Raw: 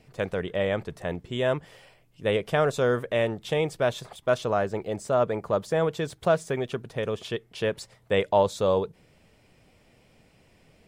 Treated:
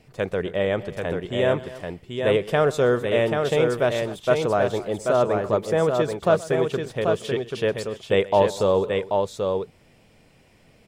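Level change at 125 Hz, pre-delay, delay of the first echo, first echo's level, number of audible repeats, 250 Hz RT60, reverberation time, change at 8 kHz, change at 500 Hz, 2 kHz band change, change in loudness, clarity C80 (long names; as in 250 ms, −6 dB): +3.5 dB, no reverb audible, 126 ms, −20.0 dB, 3, no reverb audible, no reverb audible, +3.5 dB, +5.0 dB, +3.5 dB, +4.0 dB, no reverb audible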